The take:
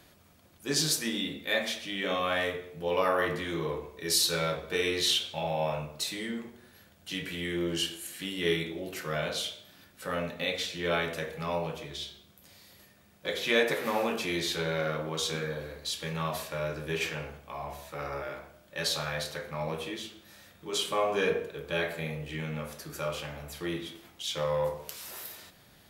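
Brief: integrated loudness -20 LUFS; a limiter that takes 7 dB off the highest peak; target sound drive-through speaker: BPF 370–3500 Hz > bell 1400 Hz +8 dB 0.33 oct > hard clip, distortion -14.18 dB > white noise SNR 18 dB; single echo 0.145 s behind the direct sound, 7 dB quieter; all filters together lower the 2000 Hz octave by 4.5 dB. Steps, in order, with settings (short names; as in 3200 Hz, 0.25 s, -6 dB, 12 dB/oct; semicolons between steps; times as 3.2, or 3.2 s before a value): bell 2000 Hz -8.5 dB; limiter -21 dBFS; BPF 370–3500 Hz; bell 1400 Hz +8 dB 0.33 oct; echo 0.145 s -7 dB; hard clip -28.5 dBFS; white noise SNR 18 dB; gain +16 dB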